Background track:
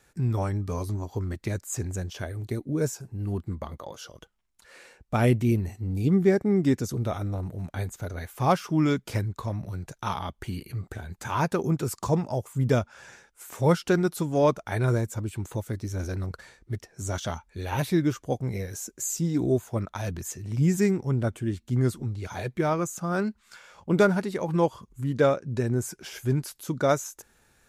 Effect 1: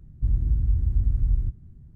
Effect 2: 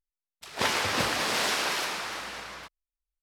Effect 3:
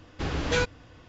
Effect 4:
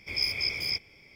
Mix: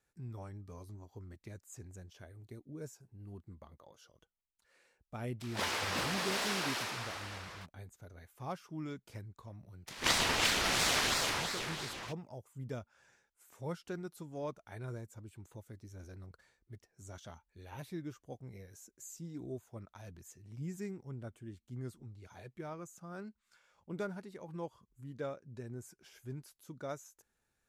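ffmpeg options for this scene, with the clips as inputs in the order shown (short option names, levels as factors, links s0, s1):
-filter_complex "[2:a]asplit=2[s0][s1];[0:a]volume=0.112[s2];[s0]volume=12.6,asoftclip=hard,volume=0.0794[s3];[s1]aeval=exprs='val(0)*sin(2*PI*1700*n/s+1700*0.8/2.9*sin(2*PI*2.9*n/s))':c=same[s4];[s3]atrim=end=3.22,asetpts=PTS-STARTPTS,volume=0.422,afade=t=in:d=0.004:c=hsin,afade=t=out:st=3.216:d=0.004:c=hsin,adelay=4980[s5];[s4]atrim=end=3.22,asetpts=PTS-STARTPTS,afade=t=in:d=0.004:c=hsin,afade=t=out:st=3.216:d=0.004:c=hsin,adelay=9450[s6];[s2][s5][s6]amix=inputs=3:normalize=0"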